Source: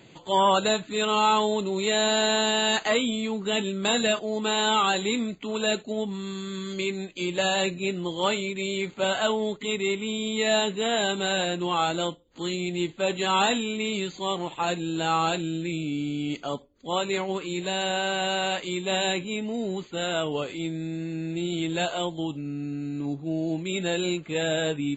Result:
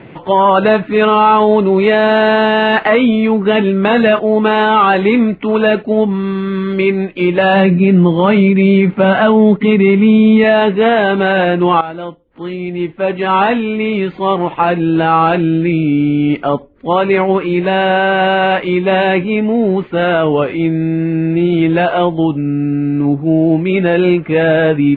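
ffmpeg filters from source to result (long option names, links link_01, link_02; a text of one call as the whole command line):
ffmpeg -i in.wav -filter_complex "[0:a]asettb=1/sr,asplit=3[link_01][link_02][link_03];[link_01]atrim=end=7.534[link_04];[link_02]atrim=start=7.53:end=10.44,asetpts=PTS-STARTPTS,afade=type=in:duration=0.004:curve=qsin,afade=type=out:start_time=2.906:duration=0.004:curve=qsin,equalizer=frequency=190:width=1.7:gain=9.5[link_05];[link_03]atrim=start=10.436[link_06];[link_04][link_05]acrossfade=duration=0.004:curve1=hsin:curve2=qsin[link_07];[link_07][link_06]acrossfade=duration=0.004:curve1=qsin:curve2=hsin,asplit=2[link_08][link_09];[link_08]atrim=end=11.81,asetpts=PTS-STARTPTS,afade=type=out:start_time=11.806:duration=0.004:curve=hsin:silence=0.16788[link_10];[link_09]atrim=start=11.81,asetpts=PTS-STARTPTS,afade=type=in:duration=3.16:silence=0.16788[link_11];[link_10][link_11]concat=n=2:v=0:a=1,lowpass=frequency=2300:width=0.5412,lowpass=frequency=2300:width=1.3066,alimiter=level_in=18dB:limit=-1dB:release=50:level=0:latency=1,volume=-1dB" out.wav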